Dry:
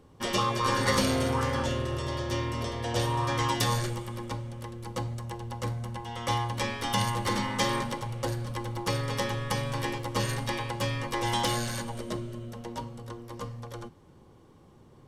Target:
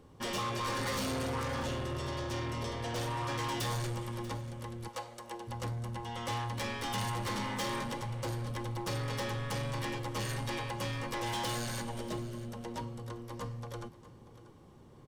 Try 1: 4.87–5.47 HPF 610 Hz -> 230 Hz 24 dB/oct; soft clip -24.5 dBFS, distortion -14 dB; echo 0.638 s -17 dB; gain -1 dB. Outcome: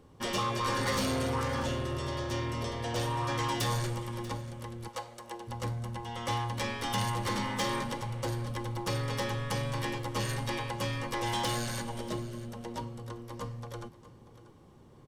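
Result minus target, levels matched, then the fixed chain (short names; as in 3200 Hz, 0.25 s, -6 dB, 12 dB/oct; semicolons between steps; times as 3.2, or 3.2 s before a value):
soft clip: distortion -6 dB
4.87–5.47 HPF 610 Hz -> 230 Hz 24 dB/oct; soft clip -31 dBFS, distortion -8 dB; echo 0.638 s -17 dB; gain -1 dB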